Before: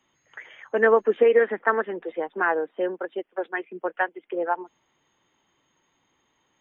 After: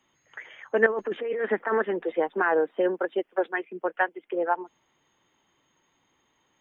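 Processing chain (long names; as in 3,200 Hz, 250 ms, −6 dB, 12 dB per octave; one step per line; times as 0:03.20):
0:00.86–0:03.53: compressor whose output falls as the input rises −24 dBFS, ratio −1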